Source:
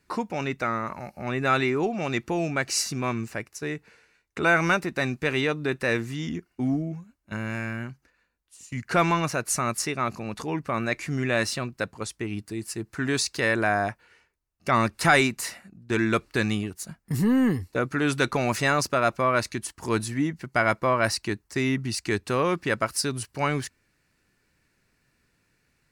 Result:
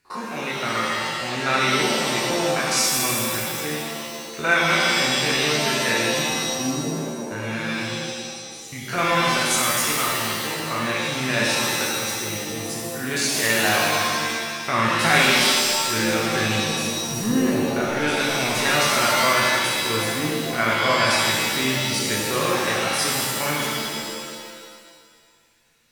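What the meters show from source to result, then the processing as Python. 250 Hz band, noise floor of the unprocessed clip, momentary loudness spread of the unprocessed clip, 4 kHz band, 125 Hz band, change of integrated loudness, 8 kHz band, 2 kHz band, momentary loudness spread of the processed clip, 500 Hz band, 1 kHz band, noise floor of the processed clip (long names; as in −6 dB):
+1.0 dB, −71 dBFS, 12 LU, +13.0 dB, −0.5 dB, +5.5 dB, +10.0 dB, +6.0 dB, 11 LU, +2.5 dB, +4.5 dB, −43 dBFS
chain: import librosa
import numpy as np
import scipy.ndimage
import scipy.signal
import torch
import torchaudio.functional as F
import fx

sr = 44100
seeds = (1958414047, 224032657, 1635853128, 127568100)

y = fx.spec_steps(x, sr, hold_ms=50)
y = fx.tilt_shelf(y, sr, db=-4.0, hz=970.0)
y = fx.rev_shimmer(y, sr, seeds[0], rt60_s=1.8, semitones=7, shimmer_db=-2, drr_db=-3.5)
y = y * 10.0 ** (-1.5 / 20.0)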